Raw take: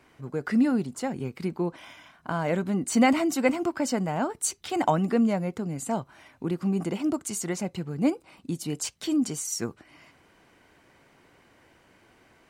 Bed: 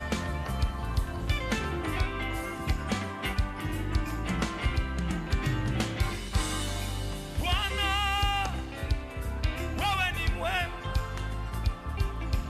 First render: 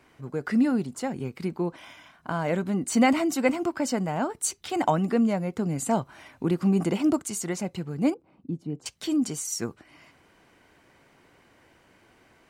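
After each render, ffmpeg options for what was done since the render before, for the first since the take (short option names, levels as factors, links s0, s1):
-filter_complex "[0:a]asettb=1/sr,asplit=3[s0][s1][s2];[s0]atrim=end=8.144[s3];[s1]atrim=start=8.14:end=8.86,asetpts=PTS-STARTPTS,afade=t=in:d=0.004:c=qsin,afade=t=out:st=0.716:d=0.004:c=qsin,bandpass=f=180:t=q:w=0.56[s4];[s2]atrim=start=8.856[s5];[s3][s4]acrossfade=d=0.004:c1=hsin:c2=qsin[s6];[s6][s5]acrossfade=d=0.004:c1=qsin:c2=hsin,asplit=3[s7][s8][s9];[s7]atrim=end=5.582[s10];[s8]atrim=start=5.578:end=7.222,asetpts=PTS-STARTPTS,volume=1.58[s11];[s9]atrim=start=7.218[s12];[s10][s11]acrossfade=d=0.004:c1=hsin:c2=hsin[s13];[s13][s12]acrossfade=d=0.004:c1=hsin:c2=hsin"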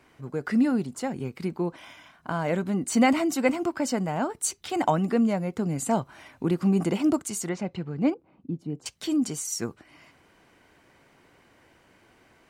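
-filter_complex "[0:a]asettb=1/sr,asplit=3[s0][s1][s2];[s0]atrim=end=7.494[s3];[s1]atrim=start=7.49:end=8.59,asetpts=PTS-STARTPTS,afade=t=in:d=0.004:c=qsin,afade=t=out:st=1.096:d=0.004:c=qsin,lowpass=3800[s4];[s2]atrim=start=8.586[s5];[s3][s4]acrossfade=d=0.004:c1=hsin:c2=qsin[s6];[s6][s5]acrossfade=d=0.004:c1=qsin:c2=hsin"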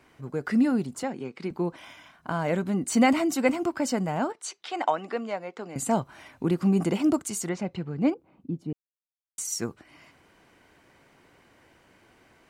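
-filter_complex "[0:a]asettb=1/sr,asplit=3[s0][s1][s2];[s0]atrim=end=1.034[s3];[s1]atrim=start=1.03:end=1.51,asetpts=PTS-STARTPTS,afade=t=in:d=0.004:c=qsin,afade=t=out:st=0.476:d=0.004:c=qsin,highpass=230,lowpass=5900[s4];[s2]atrim=start=1.506[s5];[s3][s4]acrossfade=d=0.004:c1=hsin:c2=qsin[s6];[s6][s5]acrossfade=d=0.004:c1=qsin:c2=hsin,asettb=1/sr,asplit=3[s7][s8][s9];[s7]atrim=end=4.324[s10];[s8]atrim=start=4.32:end=5.76,asetpts=PTS-STARTPTS,afade=t=in:d=0.004:c=qsin,afade=t=out:st=1.436:d=0.004:c=qsin,highpass=520,lowpass=4800[s11];[s9]atrim=start=5.756[s12];[s10][s11]acrossfade=d=0.004:c1=hsin:c2=qsin[s13];[s13][s12]acrossfade=d=0.004:c1=qsin:c2=hsin,asplit=3[s14][s15][s16];[s14]atrim=end=8.73,asetpts=PTS-STARTPTS,afade=t=out:st=8.726:d=0.004:c=hsin[s17];[s15]atrim=start=8.73:end=9.38,asetpts=PTS-STARTPTS,volume=0[s18];[s16]atrim=start=9.38,asetpts=PTS-STARTPTS,afade=t=in:d=0.004:c=hsin[s19];[s17][s18][s19]concat=n=3:v=0:a=1"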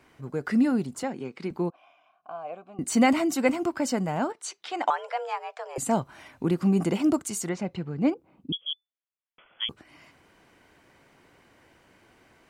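-filter_complex "[0:a]asettb=1/sr,asplit=3[s0][s1][s2];[s0]atrim=end=1.704[s3];[s1]atrim=start=1.7:end=2.79,asetpts=PTS-STARTPTS,afade=t=in:d=0.004:c=qsin,afade=t=out:st=1.086:d=0.004:c=qsin,asplit=3[s4][s5][s6];[s4]bandpass=f=730:t=q:w=8,volume=1[s7];[s5]bandpass=f=1090:t=q:w=8,volume=0.501[s8];[s6]bandpass=f=2440:t=q:w=8,volume=0.355[s9];[s7][s8][s9]amix=inputs=3:normalize=0[s10];[s2]atrim=start=2.786[s11];[s3][s10]acrossfade=d=0.004:c1=hsin:c2=qsin[s12];[s12][s11]acrossfade=d=0.004:c1=qsin:c2=hsin,asettb=1/sr,asplit=3[s13][s14][s15];[s13]atrim=end=4.904[s16];[s14]atrim=start=4.9:end=5.78,asetpts=PTS-STARTPTS,afade=t=in:d=0.004:c=qsin,afade=t=out:st=0.876:d=0.004:c=qsin,afreqshift=250[s17];[s15]atrim=start=5.776[s18];[s16][s17]acrossfade=d=0.004:c1=hsin:c2=qsin[s19];[s19][s18]acrossfade=d=0.004:c1=qsin:c2=hsin,asettb=1/sr,asplit=3[s20][s21][s22];[s20]atrim=end=8.524[s23];[s21]atrim=start=8.52:end=9.69,asetpts=PTS-STARTPTS,afade=t=in:d=0.004:c=qsin,afade=t=out:st=1.166:d=0.004:c=qsin,lowpass=f=3000:t=q:w=0.5098,lowpass=f=3000:t=q:w=0.6013,lowpass=f=3000:t=q:w=0.9,lowpass=f=3000:t=q:w=2.563,afreqshift=-3500[s24];[s22]atrim=start=9.686[s25];[s23][s24]acrossfade=d=0.004:c1=hsin:c2=qsin[s26];[s26][s25]acrossfade=d=0.004:c1=qsin:c2=hsin"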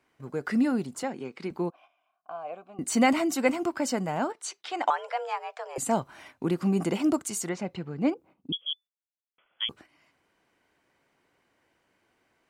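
-af "agate=range=0.282:threshold=0.00355:ratio=16:detection=peak,lowshelf=f=190:g=-6.5"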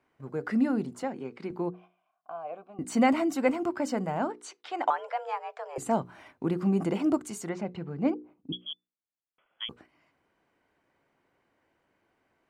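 -af "highshelf=f=2600:g=-10.5,bandreject=f=60:t=h:w=6,bandreject=f=120:t=h:w=6,bandreject=f=180:t=h:w=6,bandreject=f=240:t=h:w=6,bandreject=f=300:t=h:w=6,bandreject=f=360:t=h:w=6,bandreject=f=420:t=h:w=6,bandreject=f=480:t=h:w=6"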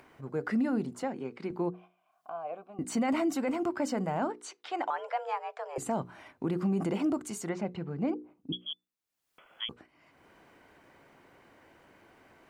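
-af "alimiter=limit=0.0794:level=0:latency=1:release=36,acompressor=mode=upward:threshold=0.00501:ratio=2.5"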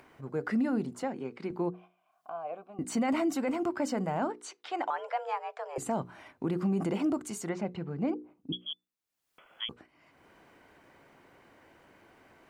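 -af anull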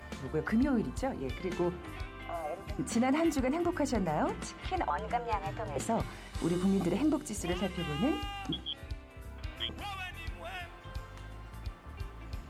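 -filter_complex "[1:a]volume=0.237[s0];[0:a][s0]amix=inputs=2:normalize=0"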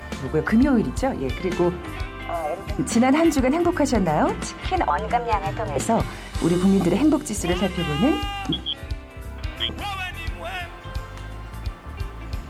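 -af "volume=3.55"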